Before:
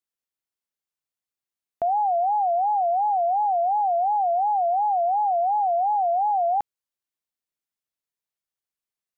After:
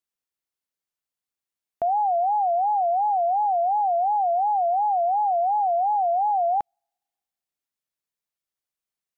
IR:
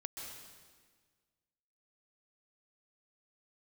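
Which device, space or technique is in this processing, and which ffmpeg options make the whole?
keyed gated reverb: -filter_complex "[0:a]asplit=3[s0][s1][s2];[1:a]atrim=start_sample=2205[s3];[s1][s3]afir=irnorm=-1:irlink=0[s4];[s2]apad=whole_len=404526[s5];[s4][s5]sidechaingate=range=0.00282:threshold=0.141:ratio=16:detection=peak,volume=0.944[s6];[s0][s6]amix=inputs=2:normalize=0"

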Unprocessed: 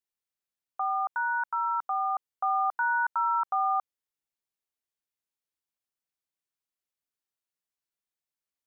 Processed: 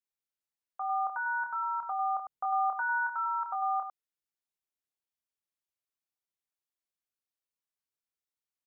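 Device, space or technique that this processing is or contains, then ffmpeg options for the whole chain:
slapback doubling: -filter_complex "[0:a]asplit=3[s0][s1][s2];[s0]afade=t=out:st=0.8:d=0.02[s3];[s1]lowshelf=f=410:g=10,afade=t=in:st=0.8:d=0.02,afade=t=out:st=2.98:d=0.02[s4];[s2]afade=t=in:st=2.98:d=0.02[s5];[s3][s4][s5]amix=inputs=3:normalize=0,asplit=3[s6][s7][s8];[s7]adelay=27,volume=0.531[s9];[s8]adelay=100,volume=0.447[s10];[s6][s9][s10]amix=inputs=3:normalize=0,volume=0.473"

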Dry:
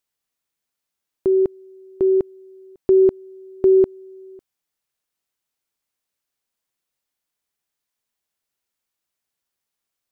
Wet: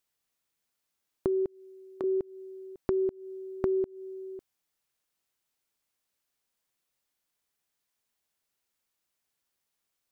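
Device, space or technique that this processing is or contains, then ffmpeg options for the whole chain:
serial compression, leveller first: -filter_complex "[0:a]acompressor=threshold=0.126:ratio=2,acompressor=threshold=0.0447:ratio=5,asettb=1/sr,asplit=3[s0][s1][s2];[s0]atrim=end=1.464[s3];[s1]atrim=start=1.46:end=2.04,asetpts=PTS-STARTPTS,afade=t=in:d=0.004:c=qsin,afade=t=out:st=0.576:d=0.004:c=qsin,highpass=f=660:p=1[s4];[s2]atrim=start=2.036[s5];[s3][s4]acrossfade=d=0.004:c1=hsin:c2=qsin[s6];[s6][s5]acrossfade=d=0.004:c1=qsin:c2=hsin"

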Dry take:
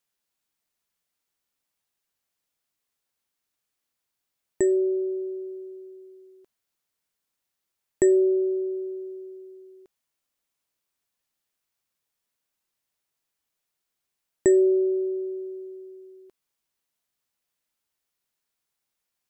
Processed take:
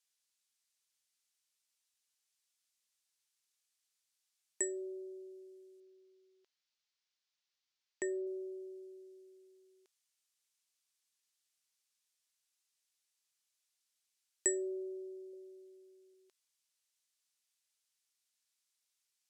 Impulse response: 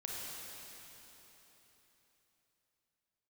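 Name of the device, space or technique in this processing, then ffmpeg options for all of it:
piezo pickup straight into a mixer: -filter_complex "[0:a]asettb=1/sr,asplit=3[s0][s1][s2];[s0]atrim=end=5.804[s3];[s1]atrim=start=5.8:end=8.27,asetpts=PTS-STARTPTS,afade=t=in:d=0.004:c=qsin,afade=t=out:st=2.466:d=0.004:c=qsin,lowpass=f=5500:w=0.5412,lowpass=f=5500:w=1.3066[s4];[s2]atrim=start=8.266[s5];[s3][s4]acrossfade=d=0.004:c1=hsin:c2=qsin[s6];[s6][s5]acrossfade=d=0.004:c1=qsin:c2=hsin,lowpass=7100,aderivative,asettb=1/sr,asplit=3[s7][s8][s9];[s7]atrim=end=15.334[s10];[s8]atrim=start=15.33:end=16.14,asetpts=PTS-STARTPTS,afade=t=in:d=0.004:c=qsin,afade=t=out:st=0.806:d=0.004:c=qsin,equalizer=f=530:w=7.6:g=13.5[s11];[s9]atrim=start=16.136[s12];[s10][s11]acrossfade=d=0.004:c1=hsin:c2=qsin[s13];[s13][s12]acrossfade=d=0.004:c1=qsin:c2=hsin,volume=2"

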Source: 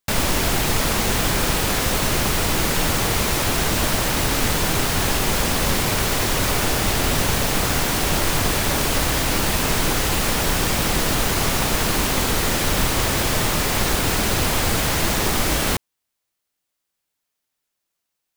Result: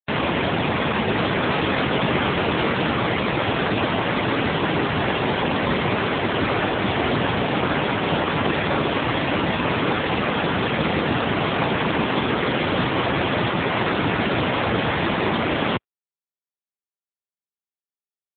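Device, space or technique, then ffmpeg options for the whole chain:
mobile call with aggressive noise cancelling: -filter_complex "[0:a]asplit=3[s0][s1][s2];[s0]afade=t=out:st=1.49:d=0.02[s3];[s1]asplit=2[s4][s5];[s5]adelay=22,volume=0.447[s6];[s4][s6]amix=inputs=2:normalize=0,afade=t=in:st=1.49:d=0.02,afade=t=out:st=2.71:d=0.02[s7];[s2]afade=t=in:st=2.71:d=0.02[s8];[s3][s7][s8]amix=inputs=3:normalize=0,highpass=f=140:p=1,afftdn=nr=28:nf=-28,volume=1.78" -ar 8000 -c:a libopencore_amrnb -b:a 7950

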